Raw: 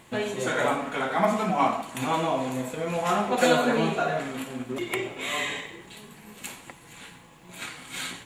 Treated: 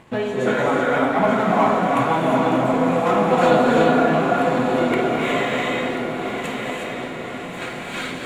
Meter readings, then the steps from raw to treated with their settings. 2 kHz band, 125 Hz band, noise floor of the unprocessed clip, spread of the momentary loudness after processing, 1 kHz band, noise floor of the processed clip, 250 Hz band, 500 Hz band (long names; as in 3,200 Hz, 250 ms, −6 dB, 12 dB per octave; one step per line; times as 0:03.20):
+6.5 dB, +8.5 dB, −51 dBFS, 13 LU, +8.0 dB, −31 dBFS, +10.0 dB, +9.0 dB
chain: low-pass filter 1,600 Hz 6 dB per octave
in parallel at −2 dB: downward compressor, threshold −36 dBFS, peak gain reduction 18 dB
on the sum: leveller curve on the samples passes 1
feedback delay with all-pass diffusion 1,130 ms, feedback 52%, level −6 dB
reverb whose tail is shaped and stops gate 390 ms rising, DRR −0.5 dB